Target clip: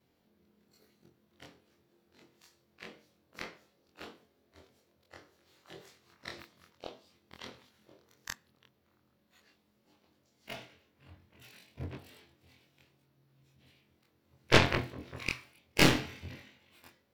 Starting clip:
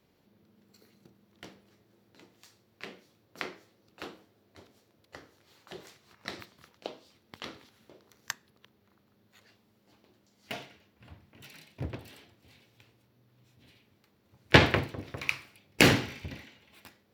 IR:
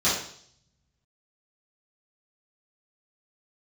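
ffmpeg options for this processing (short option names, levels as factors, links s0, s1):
-af "afftfilt=real='re':imag='-im':win_size=2048:overlap=0.75,aeval=exprs='0.376*(cos(1*acos(clip(val(0)/0.376,-1,1)))-cos(1*PI/2))+0.119*(cos(4*acos(clip(val(0)/0.376,-1,1)))-cos(4*PI/2))':c=same"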